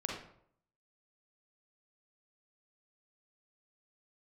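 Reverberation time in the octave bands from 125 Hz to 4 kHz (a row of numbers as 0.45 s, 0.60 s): 0.75 s, 0.70 s, 0.70 s, 0.65 s, 0.50 s, 0.40 s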